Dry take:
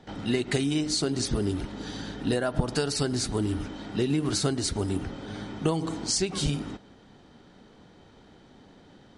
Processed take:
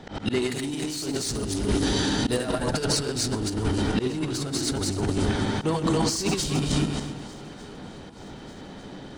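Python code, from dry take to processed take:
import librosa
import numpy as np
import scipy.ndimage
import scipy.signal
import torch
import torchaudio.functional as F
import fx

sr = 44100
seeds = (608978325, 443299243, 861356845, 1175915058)

y = fx.reverse_delay_fb(x, sr, ms=140, feedback_pct=46, wet_db=-0.5)
y = fx.high_shelf(y, sr, hz=5800.0, db=9.0, at=(0.42, 2.68))
y = 10.0 ** (-20.5 / 20.0) * np.tanh(y / 10.0 ** (-20.5 / 20.0))
y = fx.echo_feedback(y, sr, ms=126, feedback_pct=49, wet_db=-17.0)
y = fx.auto_swell(y, sr, attack_ms=116.0)
y = fx.over_compress(y, sr, threshold_db=-30.0, ratio=-0.5)
y = fx.echo_swing(y, sr, ms=1197, ratio=3, feedback_pct=49, wet_db=-24)
y = y * librosa.db_to_amplitude(5.5)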